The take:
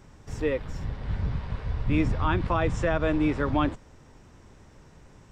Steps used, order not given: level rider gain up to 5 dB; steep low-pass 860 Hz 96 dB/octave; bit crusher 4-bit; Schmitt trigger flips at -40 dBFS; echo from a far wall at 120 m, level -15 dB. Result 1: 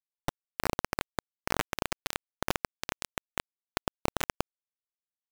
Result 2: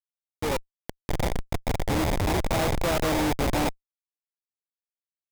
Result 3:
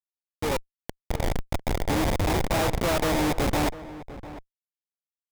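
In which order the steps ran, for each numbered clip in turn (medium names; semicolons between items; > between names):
echo from a far wall > Schmitt trigger > steep low-pass > bit crusher > level rider; echo from a far wall > bit crusher > steep low-pass > Schmitt trigger > level rider; bit crusher > steep low-pass > Schmitt trigger > echo from a far wall > level rider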